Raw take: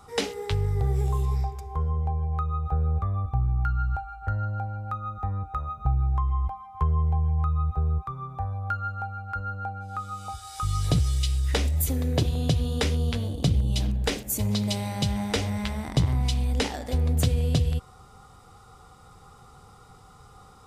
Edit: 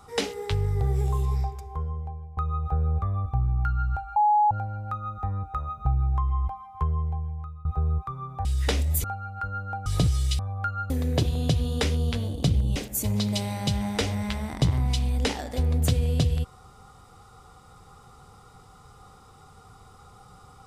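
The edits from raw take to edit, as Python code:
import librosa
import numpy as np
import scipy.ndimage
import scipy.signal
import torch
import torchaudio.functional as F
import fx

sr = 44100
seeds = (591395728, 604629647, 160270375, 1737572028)

y = fx.edit(x, sr, fx.fade_out_to(start_s=1.46, length_s=0.91, floor_db=-18.0),
    fx.bleep(start_s=4.16, length_s=0.35, hz=839.0, db=-16.5),
    fx.fade_out_to(start_s=6.63, length_s=1.02, floor_db=-23.0),
    fx.swap(start_s=8.45, length_s=0.51, other_s=11.31, other_length_s=0.59),
    fx.cut(start_s=9.78, length_s=1.0),
    fx.cut(start_s=13.76, length_s=0.35), tone=tone)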